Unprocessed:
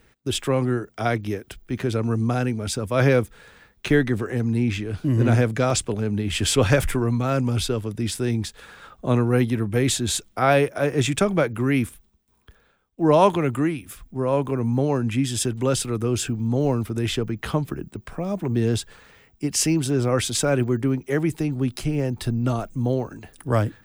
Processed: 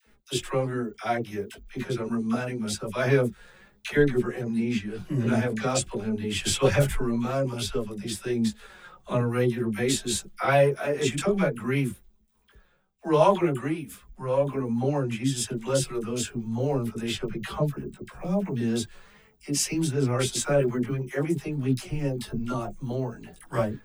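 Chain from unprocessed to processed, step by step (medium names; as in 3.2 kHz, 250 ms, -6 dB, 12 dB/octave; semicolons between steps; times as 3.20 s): flange 1.3 Hz, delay 4.5 ms, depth 1.2 ms, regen +39%; phase dispersion lows, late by 68 ms, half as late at 700 Hz; chorus voices 6, 0.2 Hz, delay 18 ms, depth 4.3 ms; trim +3 dB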